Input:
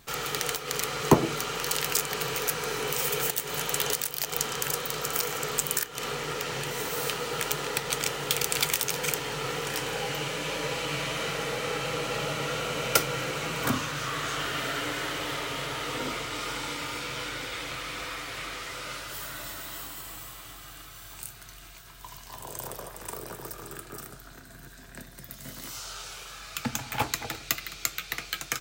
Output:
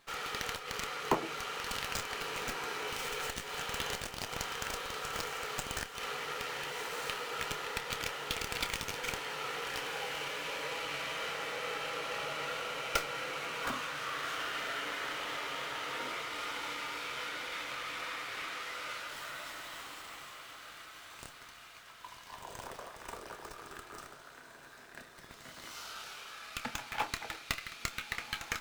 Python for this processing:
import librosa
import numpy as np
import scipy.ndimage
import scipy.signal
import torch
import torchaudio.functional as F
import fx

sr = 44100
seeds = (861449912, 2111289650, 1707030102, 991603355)

p1 = fx.highpass(x, sr, hz=1100.0, slope=6)
p2 = fx.high_shelf(p1, sr, hz=4400.0, db=-11.5)
p3 = fx.rider(p2, sr, range_db=4, speed_s=0.5)
p4 = p2 + (p3 * librosa.db_to_amplitude(-2.0))
p5 = fx.doubler(p4, sr, ms=28.0, db=-12.5)
p6 = p5 + fx.echo_diffused(p5, sr, ms=1448, feedback_pct=41, wet_db=-12.5, dry=0)
p7 = fx.running_max(p6, sr, window=3)
y = p7 * librosa.db_to_amplitude(-6.5)